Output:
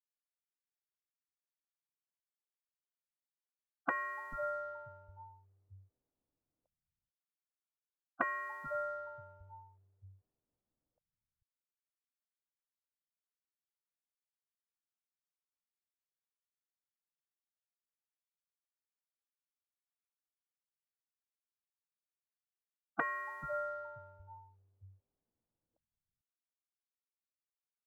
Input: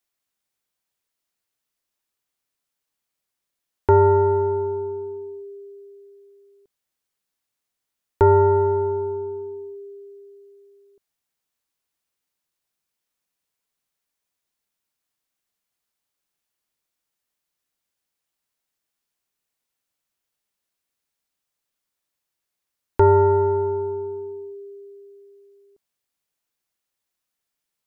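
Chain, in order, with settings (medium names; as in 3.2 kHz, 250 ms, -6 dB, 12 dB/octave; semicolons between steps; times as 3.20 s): level-controlled noise filter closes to 340 Hz, open at -18 dBFS; spectral gate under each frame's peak -25 dB weak; bands offset in time highs, lows 440 ms, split 170 Hz; trim +8.5 dB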